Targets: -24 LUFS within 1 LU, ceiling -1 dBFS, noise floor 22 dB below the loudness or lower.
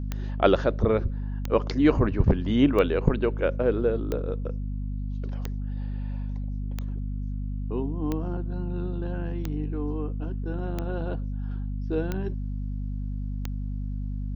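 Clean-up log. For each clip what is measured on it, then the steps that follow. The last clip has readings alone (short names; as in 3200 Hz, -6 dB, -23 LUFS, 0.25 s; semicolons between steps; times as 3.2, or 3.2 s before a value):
clicks 11; hum 50 Hz; harmonics up to 250 Hz; hum level -28 dBFS; loudness -28.0 LUFS; peak -5.0 dBFS; loudness target -24.0 LUFS
-> de-click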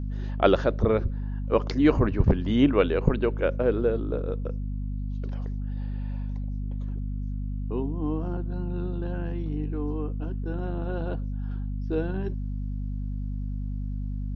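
clicks 0; hum 50 Hz; harmonics up to 250 Hz; hum level -28 dBFS
-> notches 50/100/150/200/250 Hz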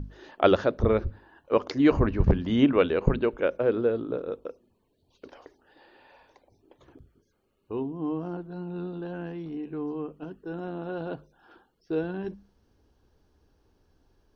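hum none; loudness -27.5 LUFS; peak -6.0 dBFS; loudness target -24.0 LUFS
-> gain +3.5 dB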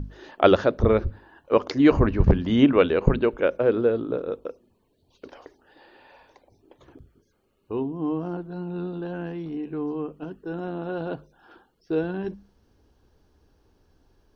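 loudness -24.0 LUFS; peak -2.5 dBFS; noise floor -68 dBFS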